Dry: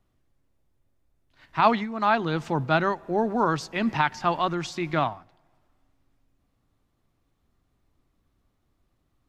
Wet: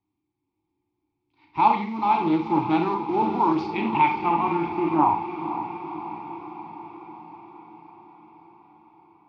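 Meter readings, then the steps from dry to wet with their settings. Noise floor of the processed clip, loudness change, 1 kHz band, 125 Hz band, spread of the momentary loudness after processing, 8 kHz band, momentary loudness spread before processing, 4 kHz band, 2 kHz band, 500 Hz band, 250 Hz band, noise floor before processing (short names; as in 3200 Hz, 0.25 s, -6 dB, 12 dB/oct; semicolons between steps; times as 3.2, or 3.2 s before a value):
-80 dBFS, +1.5 dB, +4.5 dB, -3.0 dB, 18 LU, under -15 dB, 6 LU, -6.0 dB, -4.5 dB, -2.0 dB, +4.5 dB, -73 dBFS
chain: in parallel at -7 dB: Schmitt trigger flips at -33 dBFS; on the sum: thirty-one-band EQ 100 Hz +10 dB, 250 Hz -11 dB, 630 Hz -5 dB, 2000 Hz -6 dB; low-pass sweep 5100 Hz -> 180 Hz, 3.55–6.55; vowel filter u; notch 2900 Hz, Q 20; on a send: diffused feedback echo 0.507 s, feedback 65%, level -10 dB; on the sum: Schroeder reverb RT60 0.39 s, combs from 32 ms, DRR 4 dB; AGC gain up to 5.5 dB; high shelf 5300 Hz -7.5 dB; Doppler distortion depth 0.1 ms; gain +7 dB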